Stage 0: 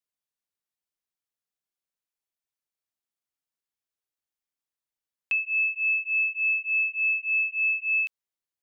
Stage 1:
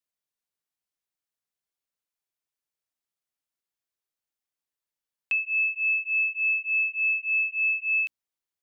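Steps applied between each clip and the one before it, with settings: notches 60/120/180/240/300 Hz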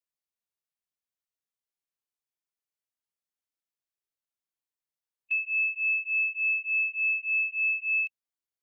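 harmonic-percussive split percussive -14 dB; gain -2 dB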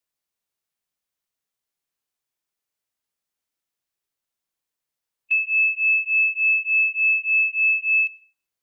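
plate-style reverb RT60 0.57 s, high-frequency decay 0.55×, pre-delay 80 ms, DRR 17 dB; gain +7.5 dB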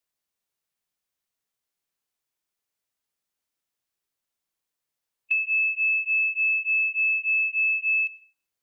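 compressor, threshold -21 dBFS, peak gain reduction 5 dB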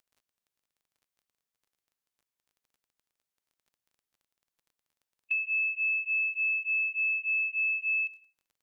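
crackle 21/s -49 dBFS; gain -5.5 dB

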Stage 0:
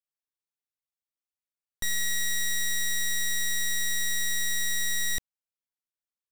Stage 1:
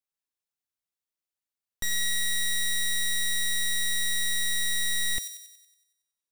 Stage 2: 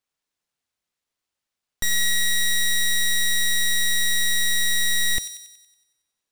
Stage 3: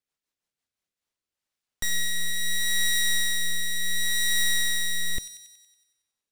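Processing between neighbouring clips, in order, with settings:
thin delay 93 ms, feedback 53%, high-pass 3600 Hz, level -4.5 dB
median filter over 3 samples; in parallel at -12 dB: wavefolder -35.5 dBFS; on the sum: gain +7 dB
rotary speaker horn 6 Hz, later 0.7 Hz, at 0.57; gain -1.5 dB

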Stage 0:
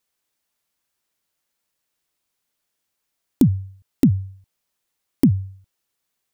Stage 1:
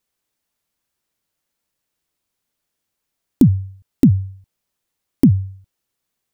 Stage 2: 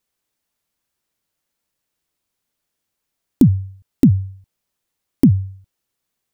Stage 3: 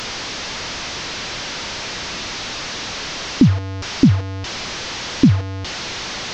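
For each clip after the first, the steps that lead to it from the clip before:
low shelf 430 Hz +6 dB; gain -1 dB
nothing audible
delta modulation 32 kbps, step -20.5 dBFS

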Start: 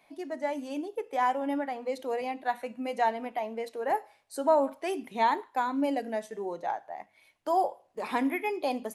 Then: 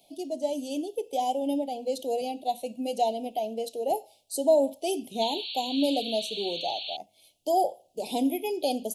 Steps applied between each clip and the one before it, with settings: high shelf 2900 Hz +8.5 dB; painted sound noise, 5.21–6.97, 2200–4500 Hz -38 dBFS; elliptic band-stop 720–3000 Hz, stop band 70 dB; gain +3.5 dB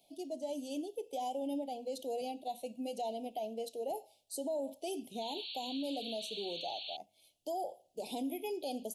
limiter -23 dBFS, peak gain reduction 10.5 dB; gain -7.5 dB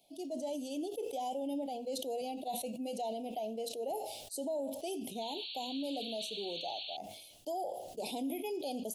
sustainer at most 44 dB/s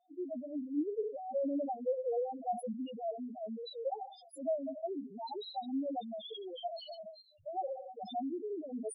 moving spectral ripple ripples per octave 1.8, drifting -0.5 Hz, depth 18 dB; loudest bins only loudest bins 2; mismatched tape noise reduction decoder only; gain +1 dB

